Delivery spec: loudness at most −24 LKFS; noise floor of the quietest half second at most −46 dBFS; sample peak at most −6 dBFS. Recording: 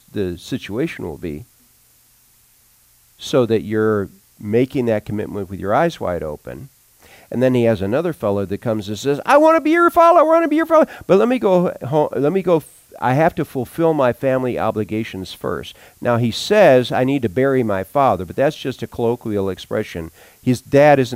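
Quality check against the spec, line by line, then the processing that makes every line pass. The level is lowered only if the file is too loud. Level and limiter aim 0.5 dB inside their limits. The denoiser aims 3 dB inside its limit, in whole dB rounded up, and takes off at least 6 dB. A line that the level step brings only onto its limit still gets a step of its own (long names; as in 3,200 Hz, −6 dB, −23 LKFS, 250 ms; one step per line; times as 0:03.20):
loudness −17.5 LKFS: out of spec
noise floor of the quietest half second −54 dBFS: in spec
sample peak −2.0 dBFS: out of spec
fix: level −7 dB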